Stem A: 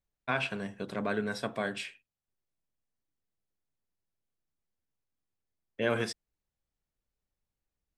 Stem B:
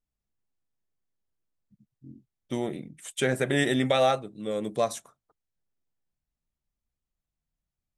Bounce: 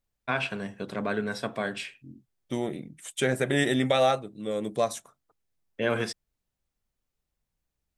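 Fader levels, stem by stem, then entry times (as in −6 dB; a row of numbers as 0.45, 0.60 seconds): +2.5, 0.0 decibels; 0.00, 0.00 seconds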